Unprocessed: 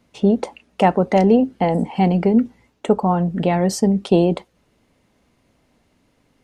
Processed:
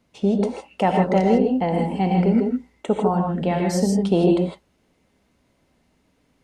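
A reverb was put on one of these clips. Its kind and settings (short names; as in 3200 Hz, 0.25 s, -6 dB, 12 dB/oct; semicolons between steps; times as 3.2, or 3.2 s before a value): non-linear reverb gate 0.18 s rising, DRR 1.5 dB; gain -5 dB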